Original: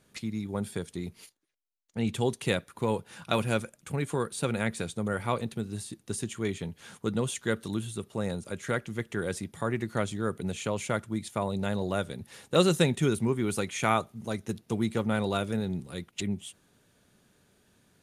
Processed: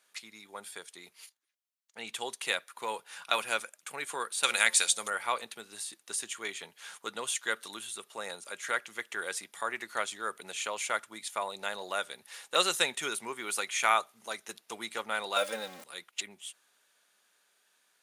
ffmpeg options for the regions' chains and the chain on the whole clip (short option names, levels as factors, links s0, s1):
-filter_complex "[0:a]asettb=1/sr,asplit=3[s0][s1][s2];[s0]atrim=end=4.434[s3];[s1]atrim=start=4.43:end=5.1,asetpts=PTS-STARTPTS,afade=t=in:d=0.004:c=qsin,afade=t=out:st=0.666:d=0.004:c=qsin,equalizer=f=7000:t=o:w=2.9:g=15,bandreject=f=179.1:t=h:w=4,bandreject=f=358.2:t=h:w=4,bandreject=f=537.3:t=h:w=4,bandreject=f=716.4:t=h:w=4,bandreject=f=895.5:t=h:w=4,bandreject=f=1074.6:t=h:w=4[s4];[s2]atrim=start=5.096[s5];[s3][s4]acrossfade=d=0.004:c1=hsin:c2=qsin[s6];[s6][s5]acrossfade=d=0.004:c1=qsin:c2=hsin,asettb=1/sr,asplit=3[s7][s8][s9];[s7]atrim=end=15.364[s10];[s8]atrim=start=15.36:end=15.84,asetpts=PTS-STARTPTS,afade=t=in:d=0.004:c=qsin,afade=t=out:st=0.476:d=0.004:c=qsin,aeval=exprs='val(0)+0.5*0.00891*sgn(val(0))':c=same,equalizer=f=580:w=3.8:g=11,aecho=1:1:3.8:0.83,atrim=end_sample=21168[s11];[s9]atrim=start=15.836[s12];[s10][s11]acrossfade=d=0.004:c1=hsin:c2=qsin[s13];[s13][s12]acrossfade=d=0.004:c1=qsin:c2=hsin,highpass=960,dynaudnorm=f=280:g=17:m=1.5"